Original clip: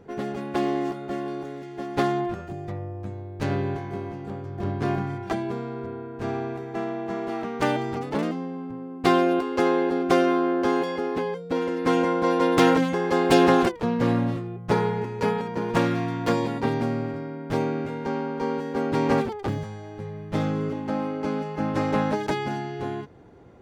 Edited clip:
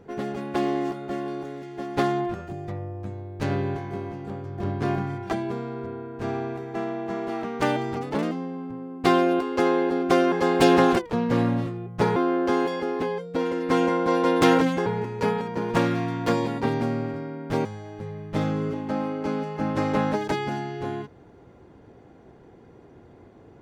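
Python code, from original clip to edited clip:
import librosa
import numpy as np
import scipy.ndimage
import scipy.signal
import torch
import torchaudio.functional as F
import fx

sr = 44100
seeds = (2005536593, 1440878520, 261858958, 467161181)

y = fx.edit(x, sr, fx.move(start_s=13.02, length_s=1.84, to_s=10.32),
    fx.cut(start_s=17.65, length_s=1.99), tone=tone)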